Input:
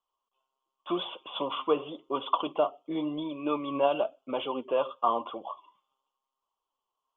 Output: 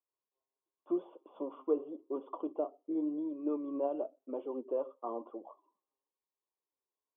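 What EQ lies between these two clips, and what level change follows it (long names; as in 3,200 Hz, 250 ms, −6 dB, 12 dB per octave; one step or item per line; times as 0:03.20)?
four-pole ladder band-pass 410 Hz, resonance 30%
parametric band 310 Hz +7 dB 1.8 octaves
0.0 dB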